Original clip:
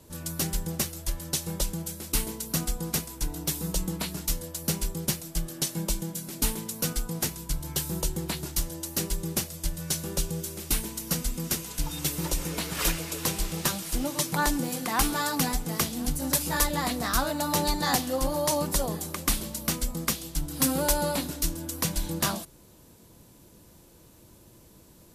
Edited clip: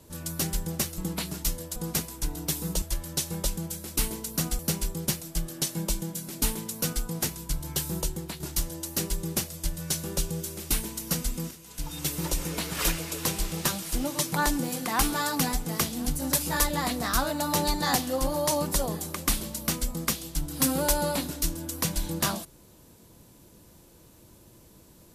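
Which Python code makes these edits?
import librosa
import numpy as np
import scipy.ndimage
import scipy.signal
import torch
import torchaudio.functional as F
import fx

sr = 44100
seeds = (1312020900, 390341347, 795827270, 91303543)

y = fx.edit(x, sr, fx.swap(start_s=0.98, length_s=1.77, other_s=3.81, other_length_s=0.78),
    fx.fade_out_to(start_s=7.97, length_s=0.43, floor_db=-8.0),
    fx.fade_in_from(start_s=11.51, length_s=0.83, curve='qsin', floor_db=-23.0), tone=tone)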